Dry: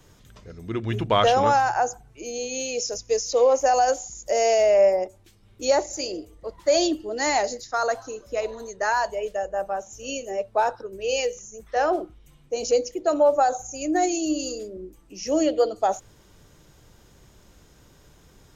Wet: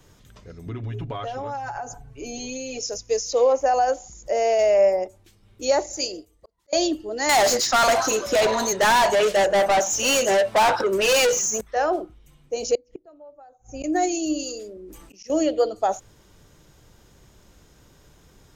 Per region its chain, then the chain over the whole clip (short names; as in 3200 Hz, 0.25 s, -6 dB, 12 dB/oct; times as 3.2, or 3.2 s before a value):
0.66–2.83 tilt -1.5 dB/oct + comb 7.2 ms, depth 98% + compressor 8:1, threshold -28 dBFS
3.52–4.59 LPF 2600 Hz 6 dB/oct + upward compressor, threshold -37 dBFS
6–6.73 high shelf 4000 Hz +9.5 dB + auto swell 0.59 s + upward expander, over -49 dBFS
7.29–11.61 notch 460 Hz, Q 6.4 + overdrive pedal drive 32 dB, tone 1600 Hz, clips at -11 dBFS + high shelf 3500 Hz +11.5 dB
12.75–13.84 LPF 4700 Hz + tilt -2 dB/oct + flipped gate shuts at -22 dBFS, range -29 dB
14.43–15.3 low shelf 340 Hz -7.5 dB + auto swell 0.22 s + sustainer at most 36 dB/s
whole clip: dry